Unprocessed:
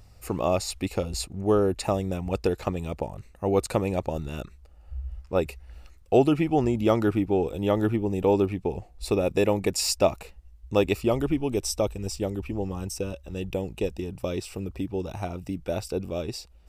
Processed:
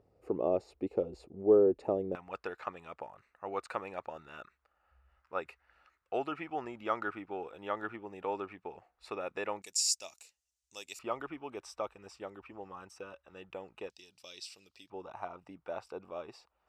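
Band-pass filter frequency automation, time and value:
band-pass filter, Q 2.2
420 Hz
from 2.15 s 1.4 kHz
from 9.62 s 6.7 kHz
from 10.99 s 1.3 kHz
from 13.90 s 4.6 kHz
from 14.90 s 1.1 kHz

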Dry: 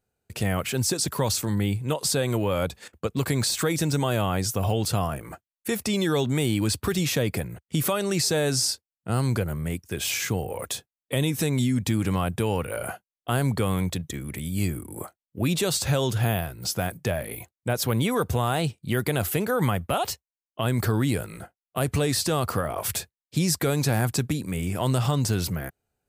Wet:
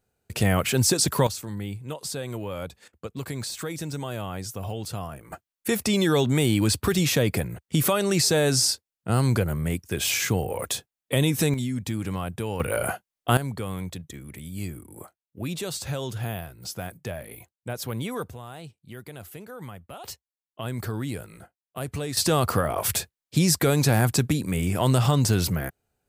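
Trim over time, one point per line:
+4 dB
from 1.27 s -8 dB
from 5.32 s +2.5 dB
from 11.54 s -5 dB
from 12.60 s +5 dB
from 13.37 s -7 dB
from 18.30 s -16 dB
from 20.04 s -7 dB
from 22.17 s +3 dB

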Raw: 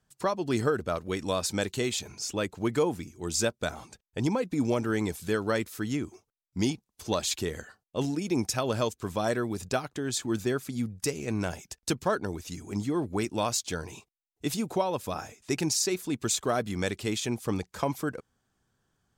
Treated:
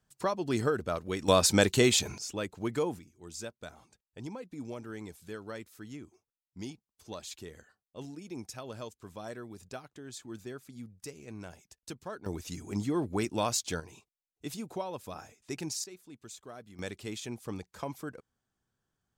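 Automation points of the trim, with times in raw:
-2.5 dB
from 1.28 s +6 dB
from 2.18 s -5 dB
from 2.99 s -14 dB
from 12.26 s -1.5 dB
from 13.80 s -9 dB
from 15.84 s -19.5 dB
from 16.79 s -9 dB

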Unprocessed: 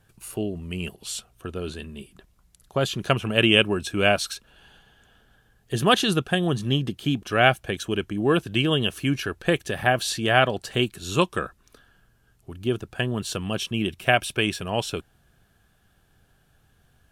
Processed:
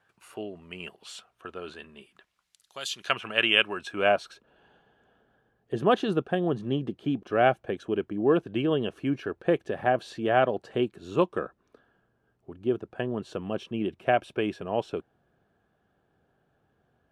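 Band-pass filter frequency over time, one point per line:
band-pass filter, Q 0.78
1.98 s 1.2 kHz
2.88 s 6.3 kHz
3.17 s 1.6 kHz
3.72 s 1.6 kHz
4.35 s 470 Hz

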